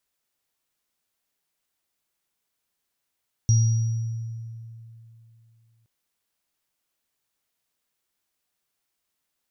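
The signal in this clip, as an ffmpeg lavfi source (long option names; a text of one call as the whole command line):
ffmpeg -f lavfi -i "aevalsrc='0.2*pow(10,-3*t/2.94)*sin(2*PI*114*t)+0.0501*pow(10,-3*t/1.28)*sin(2*PI*5730*t)':duration=2.37:sample_rate=44100" out.wav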